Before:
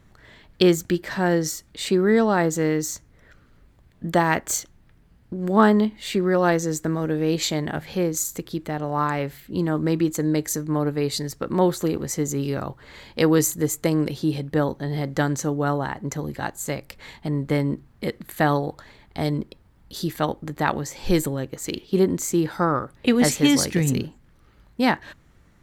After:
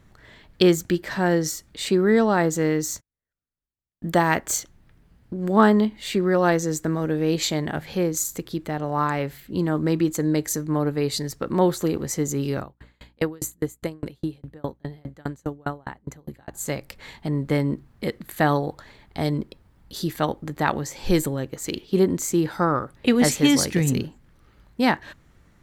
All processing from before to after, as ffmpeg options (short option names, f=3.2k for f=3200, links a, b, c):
-filter_complex "[0:a]asettb=1/sr,asplit=3[a][b][c];[a]atrim=end=2.904[d];[b]atrim=start=2.9:end=4.41,asetpts=PTS-STARTPTS,afade=t=in:d=0.004:c=qsin,afade=t=out:st=1.506:d=0.004:c=qsin,highshelf=f=10k:g=4.5,agate=range=-40dB:threshold=-45dB:ratio=16:release=100:detection=peak[e];[c]atrim=start=4.406[f];[d][e]acrossfade=d=0.004:c1=hsin:c2=qsin[g];[g][f]acrossfade=d=0.004:c1=qsin:c2=hsin,asettb=1/sr,asplit=3[h][i][j];[h]atrim=end=12.604[k];[i]atrim=start=12.6:end=16.54,asetpts=PTS-STARTPTS,afade=t=in:d=0.004:c=qsin,afade=t=out:st=3.936:d=0.004:c=qsin,equalizer=f=5.4k:t=o:w=0.3:g=-10,aeval=exprs='val(0)+0.00891*(sin(2*PI*60*n/s)+sin(2*PI*2*60*n/s)/2+sin(2*PI*3*60*n/s)/3+sin(2*PI*4*60*n/s)/4+sin(2*PI*5*60*n/s)/5)':c=same,aeval=exprs='val(0)*pow(10,-36*if(lt(mod(4.9*n/s,1),2*abs(4.9)/1000),1-mod(4.9*n/s,1)/(2*abs(4.9)/1000),(mod(4.9*n/s,1)-2*abs(4.9)/1000)/(1-2*abs(4.9)/1000))/20)':c=same[l];[j]atrim=start=16.536[m];[k][l]acrossfade=d=0.004:c1=hsin:c2=qsin[n];[n][m]acrossfade=d=0.004:c1=qsin:c2=hsin"